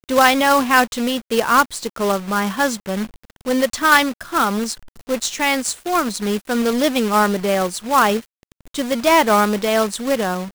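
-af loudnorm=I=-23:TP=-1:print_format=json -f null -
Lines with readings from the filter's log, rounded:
"input_i" : "-18.0",
"input_tp" : "0.1",
"input_lra" : "2.1",
"input_thresh" : "-28.4",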